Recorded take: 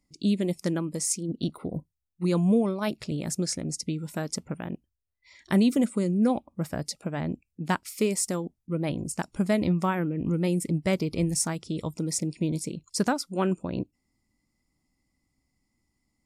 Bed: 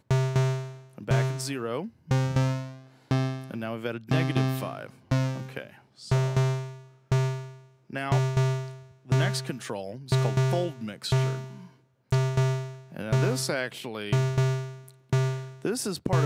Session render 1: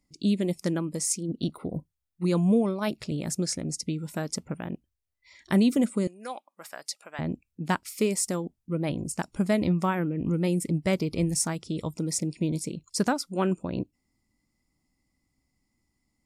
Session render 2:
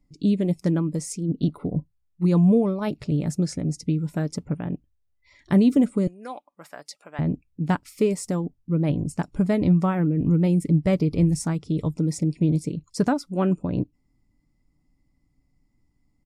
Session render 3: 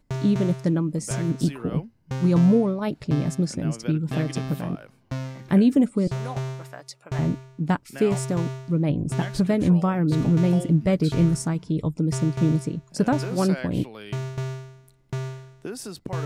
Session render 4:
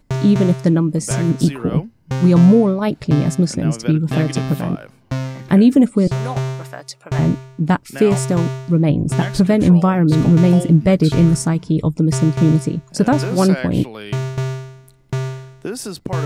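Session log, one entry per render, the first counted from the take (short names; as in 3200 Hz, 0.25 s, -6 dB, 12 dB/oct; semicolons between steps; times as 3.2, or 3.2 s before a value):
6.07–7.19 HPF 960 Hz
tilt -2.5 dB/oct; comb 6.9 ms, depth 31%
add bed -5.5 dB
gain +8 dB; limiter -3 dBFS, peak gain reduction 3 dB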